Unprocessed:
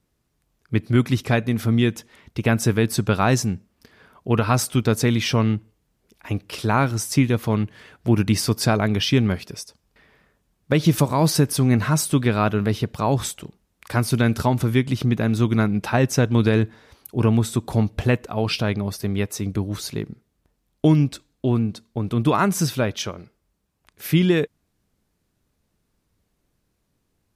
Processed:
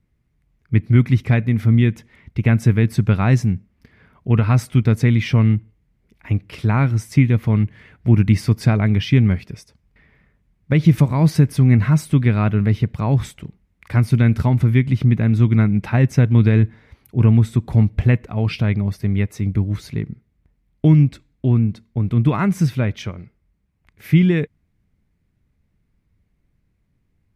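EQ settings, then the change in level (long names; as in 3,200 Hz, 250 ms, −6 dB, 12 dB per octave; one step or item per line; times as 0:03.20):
bass and treble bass +13 dB, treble −7 dB
parametric band 2,100 Hz +9.5 dB 0.47 octaves
−5.0 dB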